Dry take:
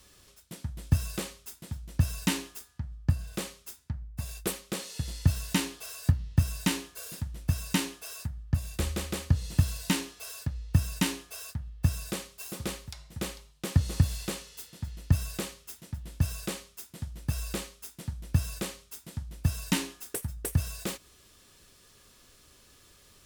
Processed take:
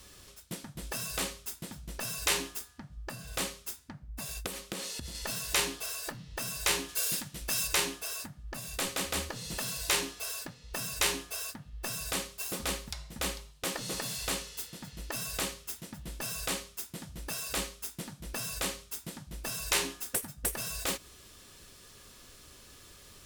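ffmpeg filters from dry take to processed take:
-filter_complex "[0:a]asettb=1/sr,asplit=3[s0][s1][s2];[s0]atrim=end=4.464[s3];[s1]atrim=start=4.46:end=5.15,asetpts=PTS-STARTPTS,afade=t=in:d=0.004:c=qsin,afade=t=out:st=0.686:d=0.004:c=qsin,acompressor=threshold=0.0141:ratio=16:attack=3.2:release=140:knee=1:detection=peak[s4];[s2]atrim=start=5.146[s5];[s3][s4]acrossfade=d=0.004:c1=hsin:c2=qsin[s6];[s6][s5]acrossfade=d=0.004:c1=qsin:c2=hsin,asplit=3[s7][s8][s9];[s7]afade=t=out:st=6.88:d=0.02[s10];[s8]adynamicequalizer=threshold=0.00158:dfrequency=1700:dqfactor=0.7:tfrequency=1700:tqfactor=0.7:attack=5:release=100:ratio=0.375:range=3.5:mode=boostabove:tftype=highshelf,afade=t=in:st=6.88:d=0.02,afade=t=out:st=7.66:d=0.02[s11];[s9]afade=t=in:st=7.66:d=0.02[s12];[s10][s11][s12]amix=inputs=3:normalize=0,afftfilt=real='re*lt(hypot(re,im),0.0891)':imag='im*lt(hypot(re,im),0.0891)':win_size=1024:overlap=0.75,volume=1.68"

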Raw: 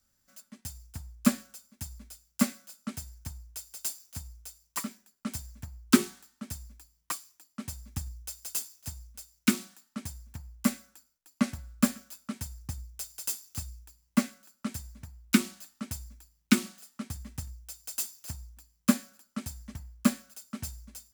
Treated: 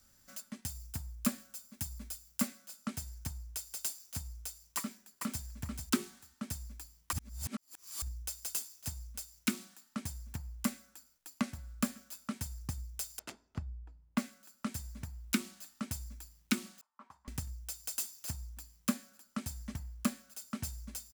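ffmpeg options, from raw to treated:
-filter_complex "[0:a]asettb=1/sr,asplit=3[s0][s1][s2];[s0]atrim=end=0.694[s3];[s1]atrim=start=0.69:end=2.48,asetpts=PTS-STARTPTS,afade=t=in:d=0.004:c=qsin,afade=t=out:st=1.786:d=0.004:c=qsin,highshelf=f=11000:g=5.5[s4];[s2]atrim=start=2.476[s5];[s3][s4]acrossfade=d=0.004:c1=hsin:c2=qsin[s6];[s6][s5]acrossfade=d=0.004:c1=qsin:c2=hsin,asplit=2[s7][s8];[s8]afade=t=in:st=4.77:d=0.01,afade=t=out:st=5.45:d=0.01,aecho=0:1:440|880:0.398107|0.0597161[s9];[s7][s9]amix=inputs=2:normalize=0,asettb=1/sr,asplit=3[s10][s11][s12];[s10]atrim=end=13.194[s13];[s11]atrim=start=13.19:end=14.18,asetpts=PTS-STARTPTS,afade=t=in:d=0.004:c=qsin,afade=t=out:st=0.986:d=0.004:c=qsin,adynamicsmooth=sensitivity=4:basefreq=930[s14];[s12]atrim=start=14.176[s15];[s13][s14]acrossfade=d=0.004:c1=hsin:c2=qsin[s16];[s16][s15]acrossfade=d=0.004:c1=qsin:c2=hsin,asettb=1/sr,asplit=3[s17][s18][s19];[s17]atrim=end=16.814[s20];[s18]atrim=start=16.81:end=17.28,asetpts=PTS-STARTPTS,afade=t=in:d=0.004:c=qsin,afade=t=out:st=0.466:d=0.004:c=qsin,bandpass=f=1000:t=q:w=8.3[s21];[s19]atrim=start=17.276[s22];[s20][s21]acrossfade=d=0.004:c1=hsin:c2=qsin[s23];[s23][s22]acrossfade=d=0.004:c1=qsin:c2=hsin,asplit=3[s24][s25][s26];[s24]atrim=end=7.132[s27];[s25]atrim=start=7.128:end=8.022,asetpts=PTS-STARTPTS,areverse[s28];[s26]atrim=start=8.018[s29];[s27][s28]acrossfade=d=0.004:c1=hsin:c2=hsin[s30];[s30][s29]acrossfade=d=0.004:c1=hsin:c2=hsin,acompressor=threshold=0.00282:ratio=2,volume=2.51"

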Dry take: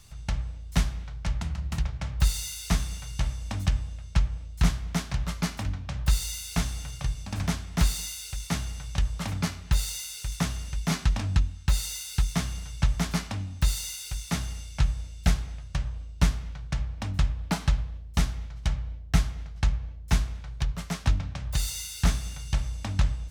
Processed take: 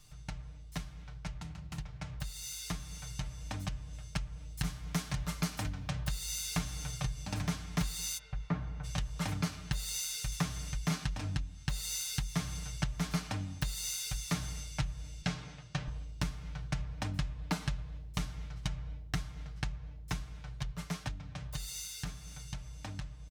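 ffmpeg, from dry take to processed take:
-filter_complex "[0:a]asettb=1/sr,asplit=3[s0][s1][s2];[s0]atrim=end=3.934[s3];[s1]atrim=start=3.93:end=5.9,asetpts=PTS-STARTPTS,afade=t=in:d=0.004:c=qsin,afade=t=out:st=1.966:d=0.004:c=qsin,highshelf=f=8000:g=7.5[s4];[s2]atrim=start=5.896[s5];[s3][s4]acrossfade=d=0.004:c1=hsin:c2=qsin[s6];[s6][s5]acrossfade=d=0.004:c1=qsin:c2=hsin,asplit=3[s7][s8][s9];[s7]afade=t=out:st=8.17:d=0.02[s10];[s8]lowpass=1400,afade=t=in:st=8.17:d=0.02,afade=t=out:st=8.83:d=0.02[s11];[s9]afade=t=in:st=8.83:d=0.02[s12];[s10][s11][s12]amix=inputs=3:normalize=0,asettb=1/sr,asplit=3[s13][s14][s15];[s13]atrim=end=15.224[s16];[s14]atrim=start=15.22:end=15.88,asetpts=PTS-STARTPTS,afade=t=in:d=0.004:c=qsin,afade=t=out:st=0.656:d=0.004:c=qsin,highpass=130,lowpass=6300[s17];[s15]atrim=start=15.876[s18];[s16][s17]acrossfade=d=0.004:c1=hsin:c2=qsin[s19];[s19][s18]acrossfade=d=0.004:c1=qsin:c2=hsin,acompressor=threshold=0.0316:ratio=6,aecho=1:1:6.6:0.65,dynaudnorm=f=430:g=17:m=2,volume=0.422"

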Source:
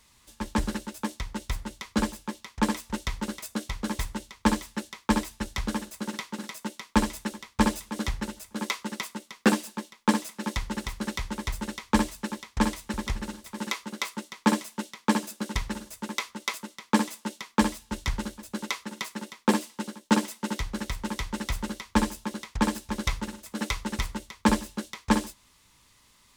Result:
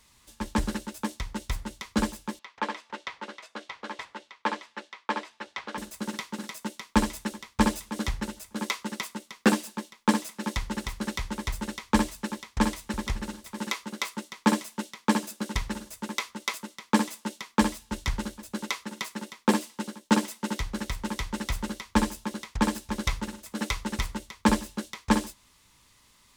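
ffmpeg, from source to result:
-filter_complex "[0:a]asettb=1/sr,asplit=3[s0][s1][s2];[s0]atrim=end=2.394[s3];[s1]atrim=start=2.39:end=5.78,asetpts=PTS-STARTPTS,afade=t=in:d=0.004:c=qsin,afade=t=out:st=3.386:d=0.004:c=qsin,highpass=520,lowpass=3300[s4];[s2]atrim=start=5.776[s5];[s3][s4]acrossfade=d=0.004:c1=hsin:c2=qsin[s6];[s6][s5]acrossfade=d=0.004:c1=qsin:c2=hsin"

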